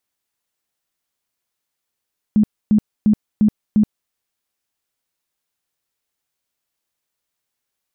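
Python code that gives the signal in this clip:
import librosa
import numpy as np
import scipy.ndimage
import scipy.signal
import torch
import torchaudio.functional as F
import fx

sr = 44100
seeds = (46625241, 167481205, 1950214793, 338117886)

y = fx.tone_burst(sr, hz=212.0, cycles=16, every_s=0.35, bursts=5, level_db=-9.5)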